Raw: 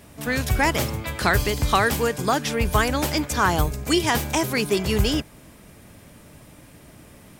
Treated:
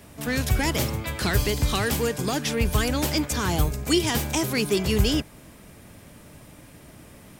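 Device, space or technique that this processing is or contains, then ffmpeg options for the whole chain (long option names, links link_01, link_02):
one-band saturation: -filter_complex "[0:a]acrossover=split=460|2400[link_01][link_02][link_03];[link_02]asoftclip=type=tanh:threshold=-30dB[link_04];[link_01][link_04][link_03]amix=inputs=3:normalize=0"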